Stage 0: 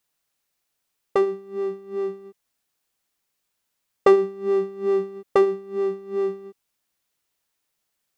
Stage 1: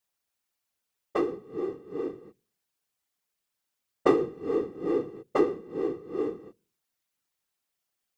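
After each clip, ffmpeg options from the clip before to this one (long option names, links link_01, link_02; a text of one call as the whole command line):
ffmpeg -i in.wav -af "bandreject=frequency=46.23:width_type=h:width=4,bandreject=frequency=92.46:width_type=h:width=4,bandreject=frequency=138.69:width_type=h:width=4,bandreject=frequency=184.92:width_type=h:width=4,bandreject=frequency=231.15:width_type=h:width=4,bandreject=frequency=277.38:width_type=h:width=4,bandreject=frequency=323.61:width_type=h:width=4,bandreject=frequency=369.84:width_type=h:width=4,bandreject=frequency=416.07:width_type=h:width=4,bandreject=frequency=462.3:width_type=h:width=4,bandreject=frequency=508.53:width_type=h:width=4,afftfilt=real='hypot(re,im)*cos(2*PI*random(0))':imag='hypot(re,im)*sin(2*PI*random(1))':win_size=512:overlap=0.75" out.wav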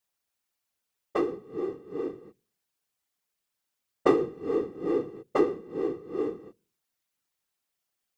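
ffmpeg -i in.wav -af anull out.wav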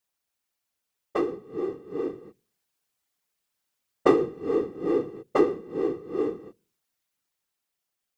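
ffmpeg -i in.wav -af "dynaudnorm=framelen=360:gausssize=9:maxgain=3.5dB" out.wav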